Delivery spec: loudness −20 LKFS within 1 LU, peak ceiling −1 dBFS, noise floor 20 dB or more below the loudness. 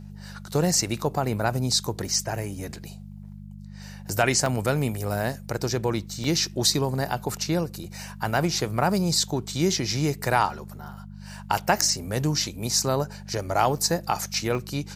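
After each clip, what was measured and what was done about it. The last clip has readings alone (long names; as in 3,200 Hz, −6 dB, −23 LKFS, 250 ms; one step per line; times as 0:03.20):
number of dropouts 6; longest dropout 2.1 ms; mains hum 50 Hz; hum harmonics up to 200 Hz; level of the hum −39 dBFS; integrated loudness −25.0 LKFS; sample peak −4.5 dBFS; target loudness −20.0 LKFS
→ repair the gap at 0:02.21/0:04.46/0:06.24/0:07.84/0:13.77/0:14.55, 2.1 ms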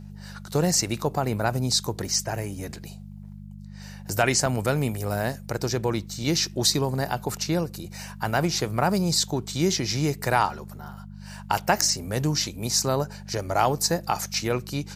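number of dropouts 0; mains hum 50 Hz; hum harmonics up to 200 Hz; level of the hum −39 dBFS
→ hum removal 50 Hz, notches 4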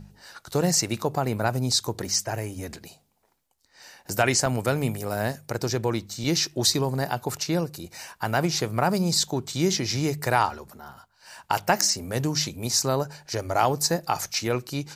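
mains hum none found; integrated loudness −25.0 LKFS; sample peak −4.5 dBFS; target loudness −20.0 LKFS
→ level +5 dB
brickwall limiter −1 dBFS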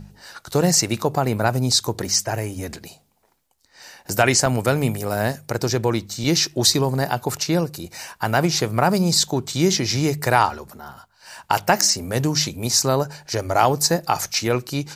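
integrated loudness −20.5 LKFS; sample peak −1.0 dBFS; background noise floor −62 dBFS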